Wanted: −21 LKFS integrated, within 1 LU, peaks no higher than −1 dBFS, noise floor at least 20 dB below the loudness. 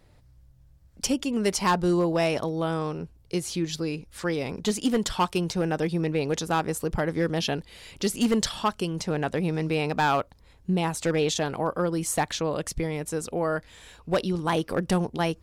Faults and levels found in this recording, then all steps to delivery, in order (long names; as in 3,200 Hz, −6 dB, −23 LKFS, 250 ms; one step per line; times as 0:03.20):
share of clipped samples 0.8%; peaks flattened at −16.5 dBFS; integrated loudness −27.0 LKFS; sample peak −16.5 dBFS; target loudness −21.0 LKFS
→ clipped peaks rebuilt −16.5 dBFS
level +6 dB